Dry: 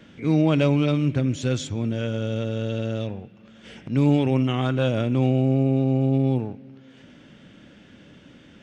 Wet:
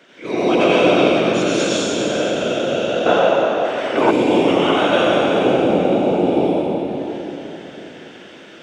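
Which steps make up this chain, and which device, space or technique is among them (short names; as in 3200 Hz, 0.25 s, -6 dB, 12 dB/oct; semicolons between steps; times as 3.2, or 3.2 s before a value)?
whispering ghost (whisperiser; HPF 450 Hz 12 dB/oct; reverb RT60 3.7 s, pre-delay 82 ms, DRR -8.5 dB); 3.06–4.11 bell 1000 Hz +14.5 dB 2 oct; gain +4 dB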